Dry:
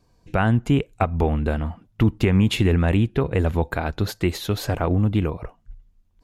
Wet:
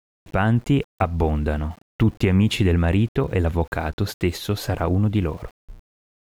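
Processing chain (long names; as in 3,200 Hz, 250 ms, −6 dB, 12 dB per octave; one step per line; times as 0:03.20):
centre clipping without the shift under −43.5 dBFS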